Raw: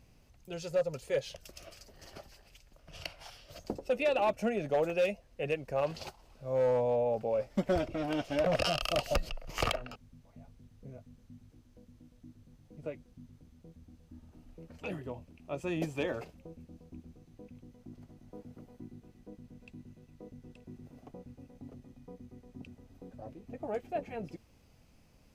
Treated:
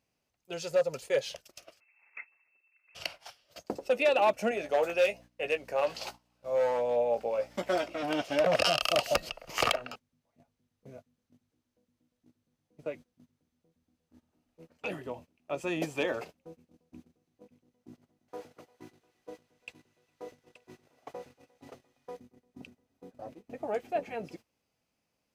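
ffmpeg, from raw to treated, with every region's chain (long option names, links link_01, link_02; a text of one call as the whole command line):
ffmpeg -i in.wav -filter_complex "[0:a]asettb=1/sr,asplit=3[link_01][link_02][link_03];[link_01]atrim=end=1.804[link_04];[link_02]atrim=start=1.8:end=2.95,asetpts=PTS-STARTPTS,afade=type=in:duration=0.004:curve=qsin,afade=type=out:start_time=1.146:duration=0.004:curve=qsin,aemphasis=mode=reproduction:type=75fm,lowpass=frequency=2300:width_type=q:width=0.5098,lowpass=frequency=2300:width_type=q:width=0.6013,lowpass=frequency=2300:width_type=q:width=0.9,lowpass=frequency=2300:width_type=q:width=2.563,afreqshift=-2700[link_05];[link_03]atrim=start=2.946[link_06];[link_04][link_05]acrossfade=duration=0.004:curve1=hsin:curve2=qsin[link_07];[link_07][link_06]acrossfade=duration=0.004:curve1=qsin:curve2=hsin,asettb=1/sr,asplit=3[link_08][link_09][link_10];[link_08]atrim=end=4.514[link_11];[link_09]atrim=start=4.51:end=8.03,asetpts=PTS-STARTPTS,afade=type=in:duration=0.004:curve=qsin,afade=type=out:start_time=3.516:duration=0.004:curve=qsin,highpass=frequency=460:poles=1,aeval=exprs='val(0)+0.002*(sin(2*PI*60*n/s)+sin(2*PI*2*60*n/s)/2+sin(2*PI*3*60*n/s)/3+sin(2*PI*4*60*n/s)/4+sin(2*PI*5*60*n/s)/5)':channel_layout=same,asplit=2[link_12][link_13];[link_13]adelay=17,volume=-8.5dB[link_14];[link_12][link_14]amix=inputs=2:normalize=0,atrim=end_sample=155232[link_15];[link_10]atrim=start=8.026[link_16];[link_11][link_15]acrossfade=duration=0.004:curve1=hsin:curve2=qsin[link_17];[link_17][link_16]acrossfade=duration=0.004:curve1=qsin:curve2=hsin,asettb=1/sr,asplit=3[link_18][link_19][link_20];[link_18]atrim=end=18.284[link_21];[link_19]atrim=start=18.28:end=22.17,asetpts=PTS-STARTPTS,afade=type=in:duration=0.004:curve=qsin,afade=type=out:start_time=3.886:duration=0.004:curve=qsin,equalizer=frequency=220:width_type=o:width=0.64:gain=-11.5,acontrast=29,asplit=2[link_22][link_23];[link_23]highpass=frequency=720:poles=1,volume=10dB,asoftclip=type=tanh:threshold=-33dB[link_24];[link_22][link_24]amix=inputs=2:normalize=0,lowpass=frequency=7700:poles=1,volume=-6dB[link_25];[link_20]atrim=start=22.166[link_26];[link_21][link_25]acrossfade=duration=0.004:curve1=hsin:curve2=qsin[link_27];[link_27][link_26]acrossfade=duration=0.004:curve1=qsin:curve2=hsin,agate=range=-17dB:threshold=-48dB:ratio=16:detection=peak,highpass=frequency=430:poles=1,volume=5.5dB" out.wav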